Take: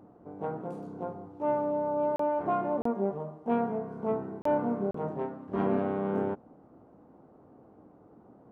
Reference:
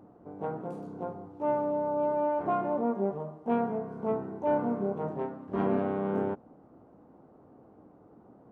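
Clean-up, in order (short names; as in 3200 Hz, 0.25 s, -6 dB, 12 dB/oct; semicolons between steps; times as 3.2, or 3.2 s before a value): interpolate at 2.16/2.82/4.42/4.91, 34 ms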